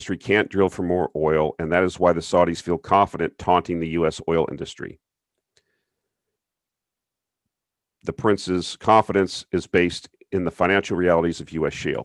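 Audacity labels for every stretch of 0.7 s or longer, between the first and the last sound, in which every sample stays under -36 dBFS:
4.920000	8.050000	silence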